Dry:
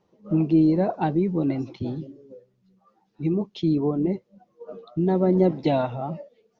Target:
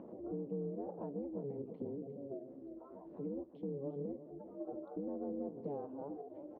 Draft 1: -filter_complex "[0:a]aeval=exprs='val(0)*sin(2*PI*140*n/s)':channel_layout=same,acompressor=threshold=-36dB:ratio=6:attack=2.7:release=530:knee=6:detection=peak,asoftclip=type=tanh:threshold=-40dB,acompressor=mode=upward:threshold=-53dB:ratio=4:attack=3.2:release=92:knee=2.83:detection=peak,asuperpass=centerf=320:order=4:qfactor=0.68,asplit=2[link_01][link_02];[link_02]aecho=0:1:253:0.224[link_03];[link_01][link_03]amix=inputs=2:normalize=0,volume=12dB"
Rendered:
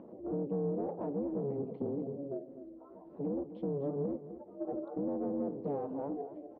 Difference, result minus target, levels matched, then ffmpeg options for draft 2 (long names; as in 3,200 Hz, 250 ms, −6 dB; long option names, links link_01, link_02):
downward compressor: peak gain reduction −10 dB; echo 100 ms early
-filter_complex "[0:a]aeval=exprs='val(0)*sin(2*PI*140*n/s)':channel_layout=same,acompressor=threshold=-48dB:ratio=6:attack=2.7:release=530:knee=6:detection=peak,asoftclip=type=tanh:threshold=-40dB,acompressor=mode=upward:threshold=-53dB:ratio=4:attack=3.2:release=92:knee=2.83:detection=peak,asuperpass=centerf=320:order=4:qfactor=0.68,asplit=2[link_01][link_02];[link_02]aecho=0:1:353:0.224[link_03];[link_01][link_03]amix=inputs=2:normalize=0,volume=12dB"